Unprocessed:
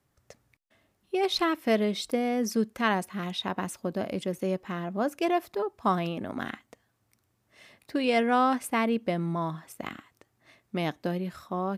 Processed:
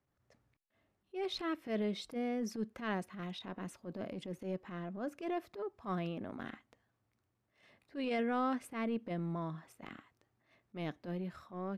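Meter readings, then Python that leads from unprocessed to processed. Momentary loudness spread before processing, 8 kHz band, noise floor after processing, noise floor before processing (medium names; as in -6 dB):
10 LU, -15.0 dB, -82 dBFS, -74 dBFS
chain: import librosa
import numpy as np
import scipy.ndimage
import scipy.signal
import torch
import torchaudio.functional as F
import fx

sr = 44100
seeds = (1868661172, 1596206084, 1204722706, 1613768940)

y = fx.lowpass(x, sr, hz=2600.0, slope=6)
y = fx.dynamic_eq(y, sr, hz=870.0, q=2.4, threshold_db=-42.0, ratio=4.0, max_db=-6)
y = fx.transient(y, sr, attack_db=-12, sustain_db=2)
y = y * 10.0 ** (-7.5 / 20.0)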